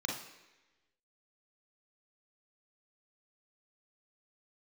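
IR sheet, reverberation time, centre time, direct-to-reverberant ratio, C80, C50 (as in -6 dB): 1.1 s, 42 ms, -1.5 dB, 8.0 dB, 3.5 dB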